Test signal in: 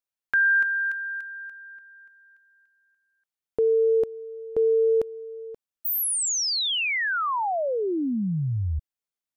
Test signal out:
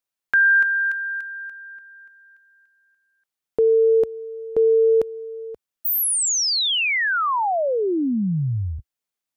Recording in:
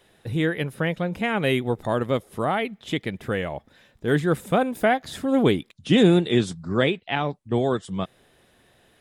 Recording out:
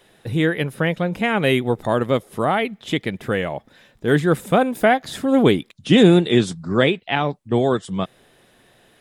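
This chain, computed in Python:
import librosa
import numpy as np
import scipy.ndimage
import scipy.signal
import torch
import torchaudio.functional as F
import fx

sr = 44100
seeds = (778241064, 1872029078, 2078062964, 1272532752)

y = fx.peak_eq(x, sr, hz=68.0, db=-12.5, octaves=0.51)
y = y * librosa.db_to_amplitude(4.5)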